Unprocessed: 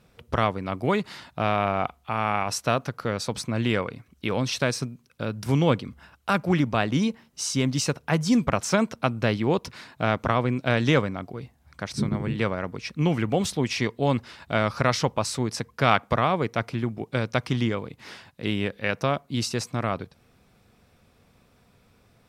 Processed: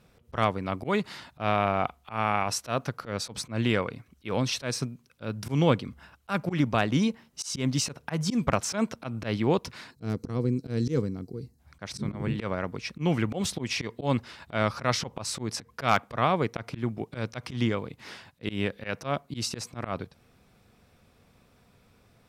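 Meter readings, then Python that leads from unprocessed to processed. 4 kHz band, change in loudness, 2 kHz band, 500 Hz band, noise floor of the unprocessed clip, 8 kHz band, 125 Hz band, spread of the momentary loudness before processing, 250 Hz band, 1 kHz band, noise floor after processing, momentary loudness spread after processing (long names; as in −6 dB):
−2.5 dB, −3.5 dB, −5.0 dB, −4.0 dB, −61 dBFS, −2.0 dB, −3.5 dB, 11 LU, −3.5 dB, −3.5 dB, −63 dBFS, 12 LU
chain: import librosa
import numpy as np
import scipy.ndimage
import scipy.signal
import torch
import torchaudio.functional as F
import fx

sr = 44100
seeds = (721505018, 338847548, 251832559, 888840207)

y = fx.auto_swell(x, sr, attack_ms=110.0)
y = np.clip(y, -10.0 ** (-7.5 / 20.0), 10.0 ** (-7.5 / 20.0))
y = fx.spec_box(y, sr, start_s=9.91, length_s=1.68, low_hz=500.0, high_hz=3900.0, gain_db=-16)
y = F.gain(torch.from_numpy(y), -1.0).numpy()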